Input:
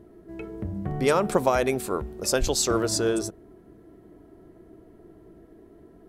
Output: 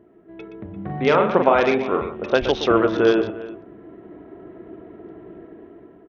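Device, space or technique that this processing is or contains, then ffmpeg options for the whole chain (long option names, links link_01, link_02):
Bluetooth headset: -filter_complex "[0:a]asettb=1/sr,asplit=3[link_01][link_02][link_03];[link_01]atrim=end=0.724[link_04];[link_02]atrim=start=0.72:end=2.1,asetpts=PTS-STARTPTS,afade=type=in:duration=0.004:curve=qsin,afade=type=out:start_time=1.376:duration=0.004:curve=qsin,asplit=2[link_05][link_06];[link_06]adelay=42,volume=-5dB[link_07];[link_05][link_07]amix=inputs=2:normalize=0,atrim=end_sample=60858[link_08];[link_03]atrim=start=2.096[link_09];[link_04][link_08]acrossfade=duration=0.004:curve1=hsin:curve2=qsin[link_10];[link_10][link_09]acrossfade=duration=0.004:curve1=qsin:curve2=hsin,highpass=frequency=240:poles=1,aecho=1:1:122|345:0.282|0.126,dynaudnorm=framelen=270:gausssize=7:maxgain=12dB,aresample=8000,aresample=44100" -ar 48000 -c:a sbc -b:a 64k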